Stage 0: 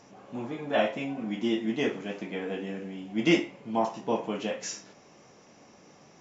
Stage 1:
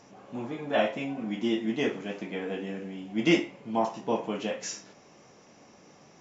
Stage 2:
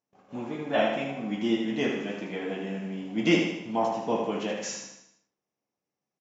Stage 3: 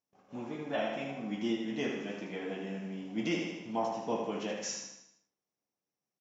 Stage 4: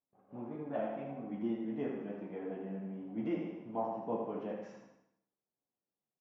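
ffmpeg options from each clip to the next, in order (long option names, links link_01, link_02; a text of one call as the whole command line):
ffmpeg -i in.wav -af anull out.wav
ffmpeg -i in.wav -filter_complex "[0:a]agate=range=-35dB:threshold=-48dB:ratio=16:detection=peak,asplit=2[link_01][link_02];[link_02]aecho=0:1:78|156|234|312|390|468:0.562|0.287|0.146|0.0746|0.038|0.0194[link_03];[link_01][link_03]amix=inputs=2:normalize=0" out.wav
ffmpeg -i in.wav -af "equalizer=frequency=5600:width_type=o:width=0.28:gain=5.5,alimiter=limit=-16.5dB:level=0:latency=1:release=332,volume=-5.5dB" out.wav
ffmpeg -i in.wav -af "lowpass=1100,flanger=delay=6.7:depth=3.8:regen=-52:speed=1.6:shape=triangular,volume=1.5dB" out.wav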